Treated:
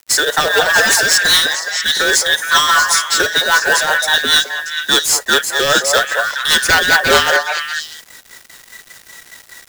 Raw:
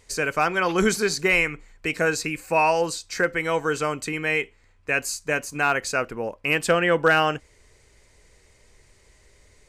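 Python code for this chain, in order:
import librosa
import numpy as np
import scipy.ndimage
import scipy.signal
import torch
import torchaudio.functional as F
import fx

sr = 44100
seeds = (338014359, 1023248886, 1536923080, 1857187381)

p1 = fx.band_invert(x, sr, width_hz=2000)
p2 = scipy.signal.sosfilt(scipy.signal.butter(2, 360.0, 'highpass', fs=sr, output='sos'), p1)
p3 = fx.high_shelf(p2, sr, hz=5200.0, db=11.0)
p4 = fx.fold_sine(p3, sr, drive_db=11, ceiling_db=-4.5)
p5 = fx.rotary(p4, sr, hz=5.0)
p6 = fx.quant_companded(p5, sr, bits=4)
p7 = fx.peak_eq(p6, sr, hz=11000.0, db=-9.5, octaves=0.24)
p8 = p7 + fx.echo_stepped(p7, sr, ms=212, hz=750.0, octaves=1.4, feedback_pct=70, wet_db=-1.0, dry=0)
p9 = fx.quant_dither(p8, sr, seeds[0], bits=6, dither='none')
y = p9 * 10.0 ** (-1.0 / 20.0)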